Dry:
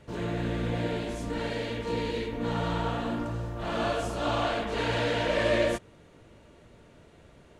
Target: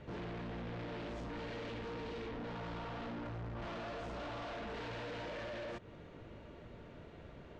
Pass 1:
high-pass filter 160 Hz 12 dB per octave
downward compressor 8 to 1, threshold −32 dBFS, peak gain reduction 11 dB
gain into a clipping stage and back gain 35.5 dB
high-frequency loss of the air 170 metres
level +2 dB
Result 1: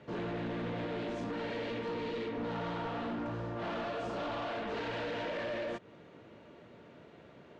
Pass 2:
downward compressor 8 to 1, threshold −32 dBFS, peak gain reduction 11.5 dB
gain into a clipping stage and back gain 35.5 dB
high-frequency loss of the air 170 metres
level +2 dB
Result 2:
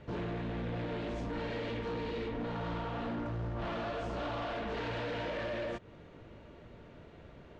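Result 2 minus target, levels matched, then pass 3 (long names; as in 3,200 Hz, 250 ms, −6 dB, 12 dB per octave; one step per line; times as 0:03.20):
gain into a clipping stage and back: distortion −5 dB
downward compressor 8 to 1, threshold −32 dBFS, peak gain reduction 11.5 dB
gain into a clipping stage and back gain 43.5 dB
high-frequency loss of the air 170 metres
level +2 dB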